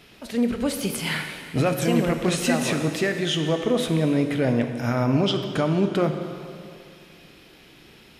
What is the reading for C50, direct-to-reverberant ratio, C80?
7.0 dB, 5.5 dB, 8.0 dB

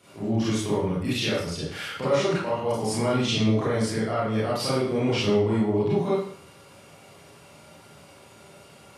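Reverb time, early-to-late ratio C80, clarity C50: 0.60 s, 5.0 dB, 0.0 dB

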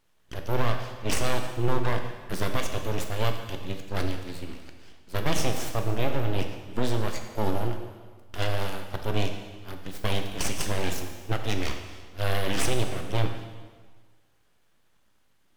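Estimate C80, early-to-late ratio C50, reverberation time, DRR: 8.0 dB, 6.5 dB, 1.5 s, 4.5 dB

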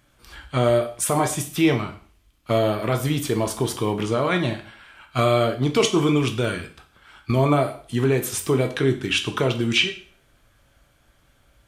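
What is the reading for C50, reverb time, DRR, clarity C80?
11.5 dB, 0.45 s, 5.0 dB, 15.5 dB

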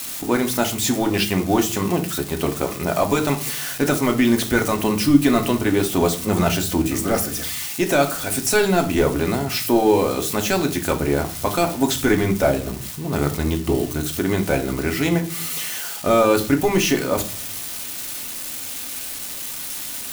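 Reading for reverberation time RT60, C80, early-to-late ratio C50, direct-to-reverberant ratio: 0.40 s, 19.0 dB, 13.5 dB, 4.0 dB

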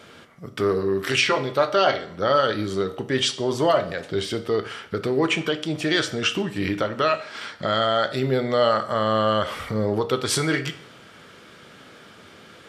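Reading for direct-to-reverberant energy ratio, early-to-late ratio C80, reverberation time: 9.0 dB, 17.0 dB, 0.60 s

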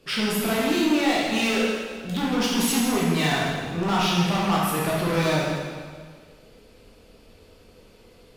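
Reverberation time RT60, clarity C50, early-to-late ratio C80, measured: 1.7 s, -1.5 dB, 1.0 dB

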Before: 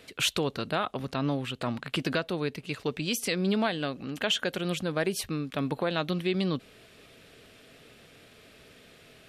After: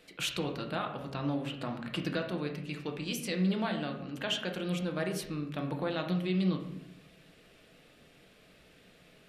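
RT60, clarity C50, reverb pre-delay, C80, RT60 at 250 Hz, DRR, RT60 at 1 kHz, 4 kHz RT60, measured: 0.80 s, 8.0 dB, 3 ms, 10.5 dB, 1.1 s, 2.0 dB, 0.70 s, 0.55 s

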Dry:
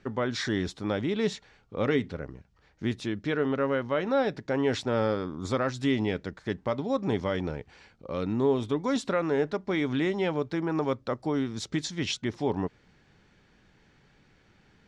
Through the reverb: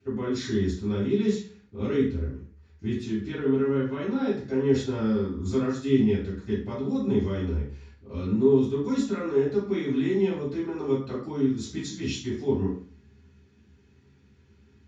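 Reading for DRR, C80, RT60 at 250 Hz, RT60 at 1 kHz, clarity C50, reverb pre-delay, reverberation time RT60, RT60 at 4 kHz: -10.5 dB, 10.0 dB, 0.50 s, 0.45 s, 5.0 dB, 3 ms, 0.45 s, 0.40 s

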